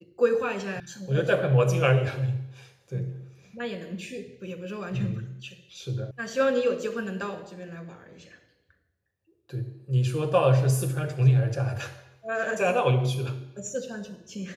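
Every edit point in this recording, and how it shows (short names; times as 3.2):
0.8 sound cut off
6.11 sound cut off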